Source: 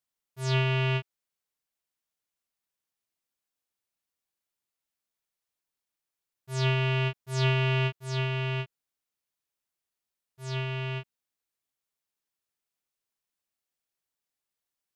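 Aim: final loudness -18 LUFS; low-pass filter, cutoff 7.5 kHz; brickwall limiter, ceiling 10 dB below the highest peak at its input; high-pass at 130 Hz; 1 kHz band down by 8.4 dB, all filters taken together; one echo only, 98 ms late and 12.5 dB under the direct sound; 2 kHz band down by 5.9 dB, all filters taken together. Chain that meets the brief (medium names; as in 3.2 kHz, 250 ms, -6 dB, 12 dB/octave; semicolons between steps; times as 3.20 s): high-pass 130 Hz; low-pass 7.5 kHz; peaking EQ 1 kHz -8.5 dB; peaking EQ 2 kHz -6.5 dB; peak limiter -26.5 dBFS; delay 98 ms -12.5 dB; trim +19.5 dB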